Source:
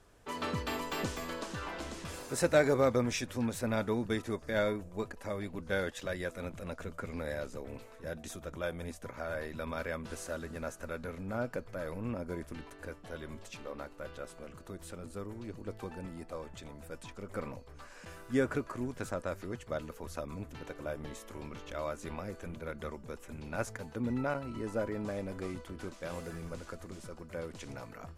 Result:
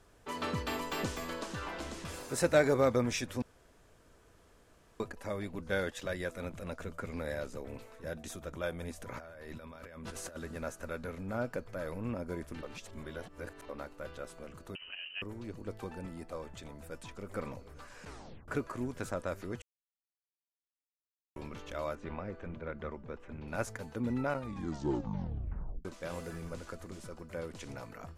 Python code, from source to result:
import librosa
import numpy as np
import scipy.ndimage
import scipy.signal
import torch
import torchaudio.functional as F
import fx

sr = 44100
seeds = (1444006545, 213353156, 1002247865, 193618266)

y = fx.over_compress(x, sr, threshold_db=-47.0, ratio=-1.0, at=(8.97, 10.35), fade=0.02)
y = fx.freq_invert(y, sr, carrier_hz=3000, at=(14.75, 15.22))
y = fx.echo_throw(y, sr, start_s=16.64, length_s=0.66, ms=430, feedback_pct=85, wet_db=-16.0)
y = fx.lowpass(y, sr, hz=2600.0, slope=12, at=(21.95, 23.48))
y = fx.edit(y, sr, fx.room_tone_fill(start_s=3.42, length_s=1.58),
    fx.reverse_span(start_s=12.63, length_s=1.06),
    fx.tape_stop(start_s=18.03, length_s=0.45),
    fx.silence(start_s=19.62, length_s=1.74),
    fx.tape_stop(start_s=24.32, length_s=1.53), tone=tone)